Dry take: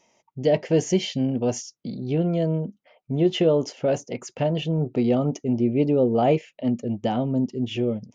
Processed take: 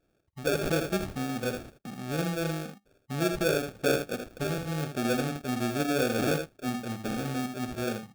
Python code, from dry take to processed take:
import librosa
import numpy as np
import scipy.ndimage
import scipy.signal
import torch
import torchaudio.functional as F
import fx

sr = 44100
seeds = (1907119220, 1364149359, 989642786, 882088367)

y = fx.peak_eq(x, sr, hz=340.0, db=7.0, octaves=1.8, at=(3.71, 4.31))
y = fx.sample_hold(y, sr, seeds[0], rate_hz=1000.0, jitter_pct=0)
y = fx.room_early_taps(y, sr, ms=(51, 79), db=(-12.5, -8.0))
y = fx.pre_swell(y, sr, db_per_s=52.0, at=(0.51, 0.91))
y = y * 10.0 ** (-8.5 / 20.0)